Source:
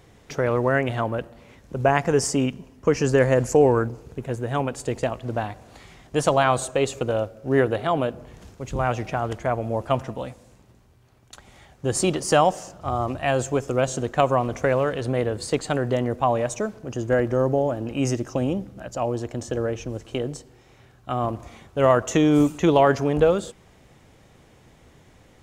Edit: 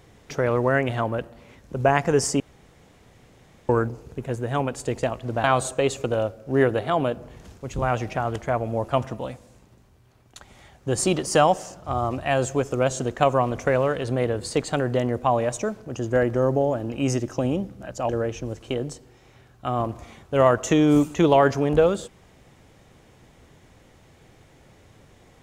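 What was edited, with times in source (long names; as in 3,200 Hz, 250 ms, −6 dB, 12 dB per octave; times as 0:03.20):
0:02.40–0:03.69: fill with room tone
0:05.44–0:06.41: remove
0:19.06–0:19.53: remove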